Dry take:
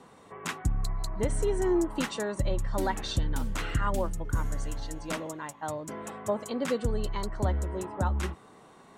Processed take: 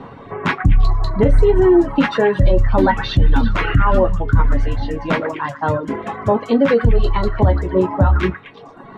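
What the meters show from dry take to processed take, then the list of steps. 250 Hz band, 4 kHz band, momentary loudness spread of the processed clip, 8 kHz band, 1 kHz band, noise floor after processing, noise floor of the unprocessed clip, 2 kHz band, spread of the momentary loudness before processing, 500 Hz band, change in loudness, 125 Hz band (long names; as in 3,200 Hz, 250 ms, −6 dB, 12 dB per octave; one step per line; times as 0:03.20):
+15.0 dB, +9.0 dB, 9 LU, can't be measured, +14.5 dB, −39 dBFS, −54 dBFS, +15.0 dB, 9 LU, +15.5 dB, +15.0 dB, +15.0 dB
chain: low-shelf EQ 170 Hz +7 dB
resonators tuned to a chord F#2 major, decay 0.21 s
echo through a band-pass that steps 114 ms, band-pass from 1,500 Hz, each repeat 0.7 octaves, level −5 dB
reverb reduction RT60 1 s
high-frequency loss of the air 340 metres
boost into a limiter +33.5 dB
level −4 dB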